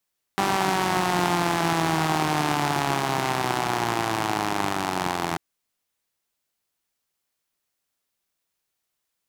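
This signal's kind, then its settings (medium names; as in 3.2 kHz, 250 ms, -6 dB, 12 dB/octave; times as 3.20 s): four-cylinder engine model, changing speed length 4.99 s, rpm 5900, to 2500, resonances 170/320/770 Hz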